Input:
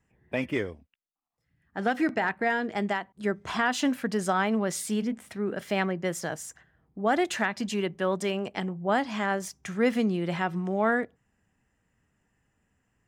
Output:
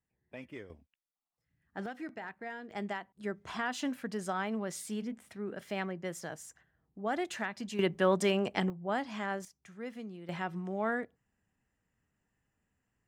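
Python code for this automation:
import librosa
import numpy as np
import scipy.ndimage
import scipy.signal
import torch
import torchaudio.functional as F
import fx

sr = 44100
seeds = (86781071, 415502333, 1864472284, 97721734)

y = fx.gain(x, sr, db=fx.steps((0.0, -17.0), (0.7, -7.0), (1.86, -16.0), (2.71, -9.0), (7.79, 0.5), (8.7, -8.0), (9.45, -18.0), (10.29, -8.0)))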